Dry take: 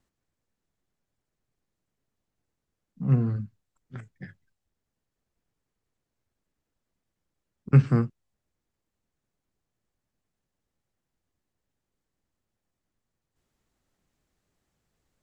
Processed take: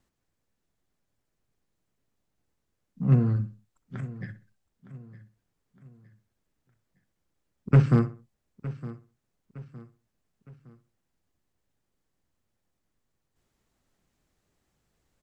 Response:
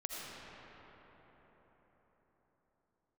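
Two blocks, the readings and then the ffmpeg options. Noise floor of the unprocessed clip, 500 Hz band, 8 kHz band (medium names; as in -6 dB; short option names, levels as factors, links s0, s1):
-85 dBFS, +2.0 dB, no reading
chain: -filter_complex "[0:a]asplit=2[s0][s1];[s1]adelay=63,lowpass=f=2300:p=1,volume=0.224,asplit=2[s2][s3];[s3]adelay=63,lowpass=f=2300:p=1,volume=0.34,asplit=2[s4][s5];[s5]adelay=63,lowpass=f=2300:p=1,volume=0.34[s6];[s2][s4][s6]amix=inputs=3:normalize=0[s7];[s0][s7]amix=inputs=2:normalize=0,asoftclip=type=hard:threshold=0.211,asplit=2[s8][s9];[s9]aecho=0:1:912|1824|2736:0.141|0.0579|0.0237[s10];[s8][s10]amix=inputs=2:normalize=0,volume=1.26"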